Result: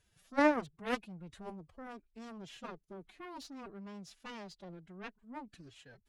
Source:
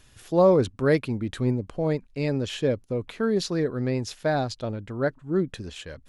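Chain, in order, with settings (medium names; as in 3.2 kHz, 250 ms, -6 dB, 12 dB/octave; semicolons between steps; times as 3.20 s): Chebyshev shaper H 3 -8 dB, 5 -40 dB, 6 -33 dB, 7 -34 dB, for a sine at -9 dBFS; formant-preserving pitch shift +8 st; trim -6 dB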